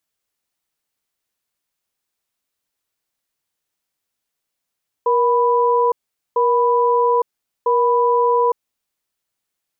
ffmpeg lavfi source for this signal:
-f lavfi -i "aevalsrc='0.168*(sin(2*PI*475*t)+sin(2*PI*989*t))*clip(min(mod(t,1.3),0.86-mod(t,1.3))/0.005,0,1)':d=3.75:s=44100"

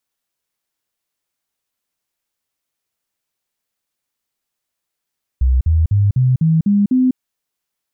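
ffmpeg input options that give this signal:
-f lavfi -i "aevalsrc='0.316*clip(min(mod(t,0.25),0.2-mod(t,0.25))/0.005,0,1)*sin(2*PI*63.9*pow(2,floor(t/0.25)/3)*mod(t,0.25))':d=1.75:s=44100"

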